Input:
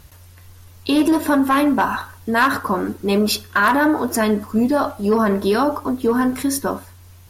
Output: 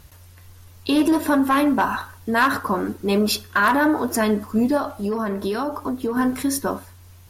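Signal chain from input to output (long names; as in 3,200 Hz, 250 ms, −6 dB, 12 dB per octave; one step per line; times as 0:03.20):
0:04.77–0:06.17: downward compressor, threshold −19 dBFS, peak gain reduction 7 dB
level −2 dB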